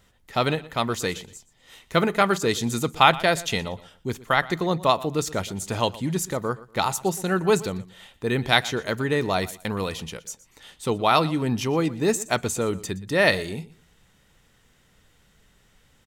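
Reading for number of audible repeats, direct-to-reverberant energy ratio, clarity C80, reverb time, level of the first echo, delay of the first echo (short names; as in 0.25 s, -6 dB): 2, none, none, none, -19.0 dB, 0.12 s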